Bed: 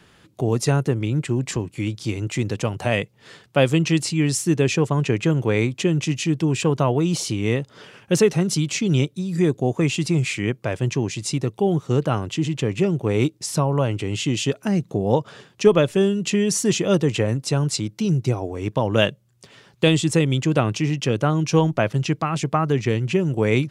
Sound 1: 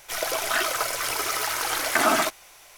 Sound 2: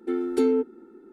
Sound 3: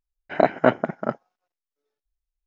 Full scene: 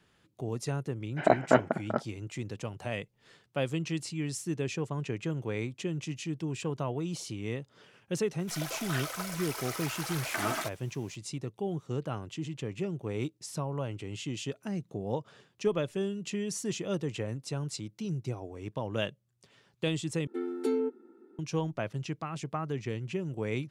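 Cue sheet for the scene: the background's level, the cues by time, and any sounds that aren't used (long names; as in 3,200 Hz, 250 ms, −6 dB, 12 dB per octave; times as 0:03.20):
bed −14 dB
0:00.87: mix in 3 −5 dB
0:08.39: mix in 1 −12 dB
0:20.27: overwrite with 2 −7 dB + high-pass filter 220 Hz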